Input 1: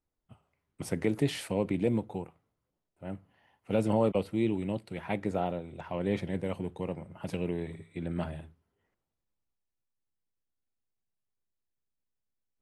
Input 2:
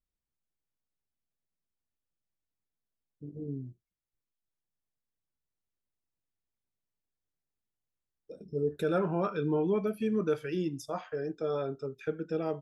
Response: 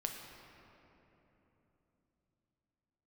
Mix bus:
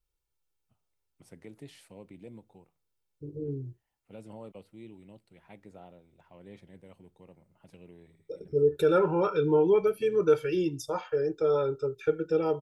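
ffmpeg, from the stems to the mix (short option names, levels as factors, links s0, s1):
-filter_complex "[0:a]adynamicequalizer=threshold=0.00398:dfrequency=3300:dqfactor=0.7:tfrequency=3300:tqfactor=0.7:attack=5:release=100:ratio=0.375:range=2:mode=boostabove:tftype=highshelf,adelay=400,volume=0.112[s0];[1:a]bandreject=f=1900:w=8.9,aecho=1:1:2.2:0.87,volume=1.33,asplit=2[s1][s2];[s2]apad=whole_len=573850[s3];[s0][s3]sidechaincompress=threshold=0.0112:ratio=8:attack=7.7:release=551[s4];[s4][s1]amix=inputs=2:normalize=0"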